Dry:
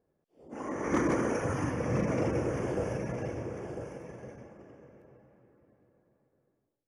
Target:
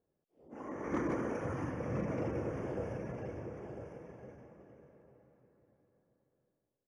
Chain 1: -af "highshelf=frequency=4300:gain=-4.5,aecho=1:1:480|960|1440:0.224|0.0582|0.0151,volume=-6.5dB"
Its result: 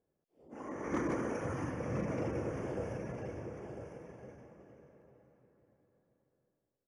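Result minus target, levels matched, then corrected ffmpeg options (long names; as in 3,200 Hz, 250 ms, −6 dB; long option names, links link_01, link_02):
8,000 Hz band +5.5 dB
-af "highshelf=frequency=4300:gain=-12.5,aecho=1:1:480|960|1440:0.224|0.0582|0.0151,volume=-6.5dB"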